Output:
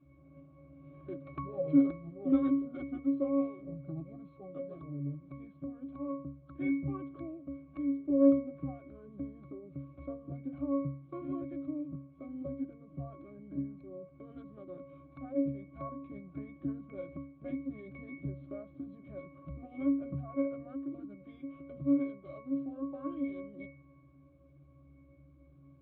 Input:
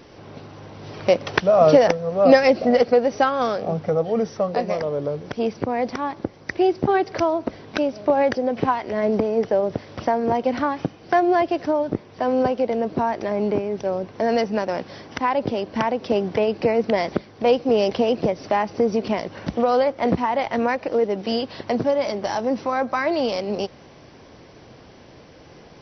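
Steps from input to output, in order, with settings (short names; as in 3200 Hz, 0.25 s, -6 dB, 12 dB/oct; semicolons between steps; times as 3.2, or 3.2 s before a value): formant shift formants -6 st; octave resonator C#, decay 0.46 s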